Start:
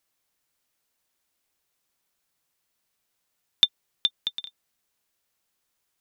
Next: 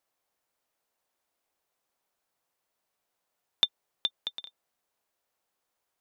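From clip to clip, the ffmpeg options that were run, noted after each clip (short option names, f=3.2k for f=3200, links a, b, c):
-af "equalizer=f=690:w=0.61:g=10.5,volume=-7dB"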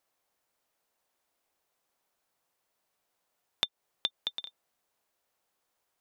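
-af "acompressor=threshold=-29dB:ratio=5,volume=2dB"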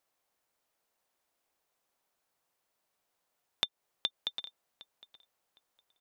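-filter_complex "[0:a]asplit=2[a][b];[b]adelay=760,lowpass=f=4.5k:p=1,volume=-19dB,asplit=2[c][d];[d]adelay=760,lowpass=f=4.5k:p=1,volume=0.24[e];[a][c][e]amix=inputs=3:normalize=0,volume=-1.5dB"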